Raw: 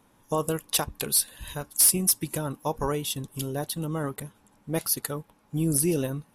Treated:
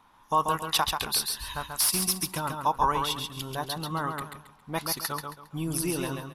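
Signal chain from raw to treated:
graphic EQ with 10 bands 125 Hz −6 dB, 250 Hz −4 dB, 500 Hz −9 dB, 1,000 Hz +11 dB, 4,000 Hz +5 dB, 8,000 Hz −6 dB, 16,000 Hz −6 dB
on a send: repeating echo 136 ms, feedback 29%, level −5 dB

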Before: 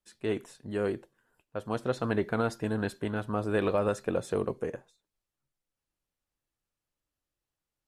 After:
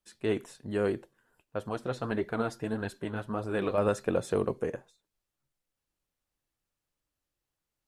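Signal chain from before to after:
0:01.69–0:03.78: flanger 1.7 Hz, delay 1 ms, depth 7.7 ms, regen +44%
level +1.5 dB

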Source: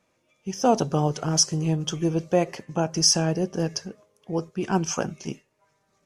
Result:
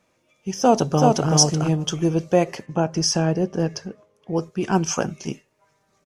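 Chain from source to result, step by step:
0:00.59–0:01.30: delay throw 380 ms, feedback 10%, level −2 dB
0:02.66–0:04.36: high-shelf EQ 4,700 Hz −11.5 dB
level +3.5 dB

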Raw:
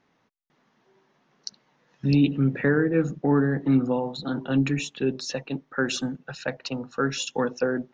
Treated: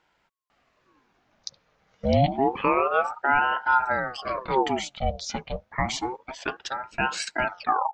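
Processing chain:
turntable brake at the end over 0.50 s
gain on a spectral selection 0:05.00–0:05.25, 410–2,600 Hz −7 dB
ring modulator whose carrier an LFO sweeps 740 Hz, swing 60%, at 0.28 Hz
level +2 dB

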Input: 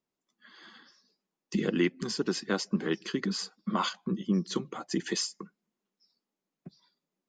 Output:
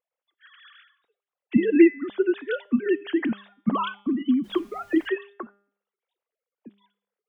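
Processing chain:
three sine waves on the formant tracks
hum removal 201.2 Hz, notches 31
0:04.43–0:05.07: background noise pink −66 dBFS
level +8 dB

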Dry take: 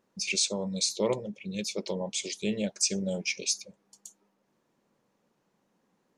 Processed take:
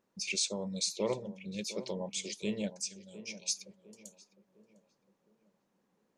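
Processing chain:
0:02.74–0:03.48: guitar amp tone stack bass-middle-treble 5-5-5
tape delay 706 ms, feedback 48%, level −13 dB, low-pass 1,300 Hz
level −5 dB

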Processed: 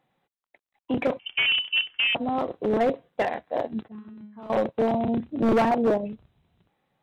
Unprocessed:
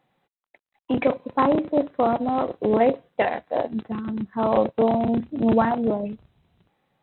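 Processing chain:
0:05.25–0:05.98: dynamic equaliser 490 Hz, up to +8 dB, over −32 dBFS, Q 0.76
hard clipping −14 dBFS, distortion −11 dB
0:01.19–0:02.15: voice inversion scrambler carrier 3,300 Hz
0:03.88–0:04.50: tuned comb filter 210 Hz, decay 0.6 s, harmonics all, mix 90%
level −3 dB

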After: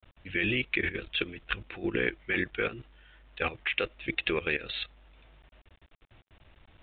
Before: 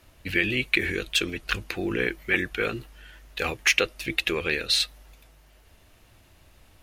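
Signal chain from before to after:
output level in coarse steps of 14 dB
bit-depth reduction 10 bits, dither none
downsampling to 8,000 Hz

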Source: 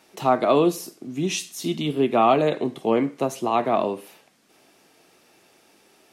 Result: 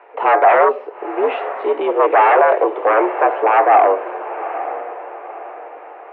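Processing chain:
sine wavefolder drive 12 dB, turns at −6 dBFS
feedback delay with all-pass diffusion 908 ms, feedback 41%, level −12.5 dB
single-sideband voice off tune +81 Hz 290–2,300 Hz
parametric band 780 Hz +10.5 dB 2 octaves
level −9 dB

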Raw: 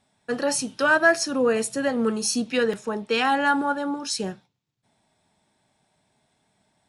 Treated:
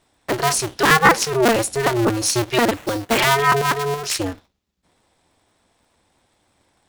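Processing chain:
sub-harmonics by changed cycles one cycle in 2, inverted
0:02.74–0:03.18: sample-rate reduction 5,000 Hz, jitter 20%
level +5 dB

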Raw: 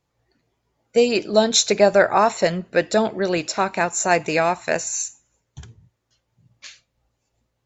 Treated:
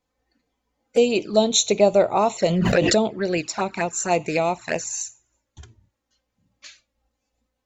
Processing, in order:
flanger swept by the level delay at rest 3.9 ms, full sweep at −16 dBFS
0:02.46–0:02.98: background raised ahead of every attack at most 22 dB per second

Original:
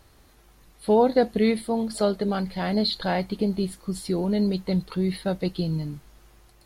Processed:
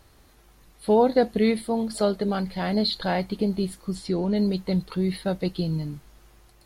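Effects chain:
0:03.95–0:04.36: low-pass filter 7,100 Hz 12 dB per octave

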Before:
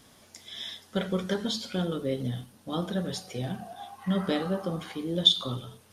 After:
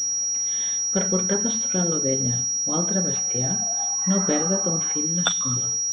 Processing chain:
gain on a spectral selection 0:05.06–0:05.57, 320–1,000 Hz −14 dB
switching amplifier with a slow clock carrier 5,700 Hz
level +4.5 dB

